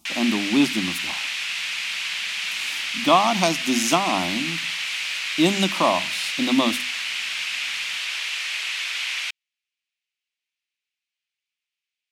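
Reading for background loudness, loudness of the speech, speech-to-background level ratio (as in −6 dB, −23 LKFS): −25.0 LKFS, −22.5 LKFS, 2.5 dB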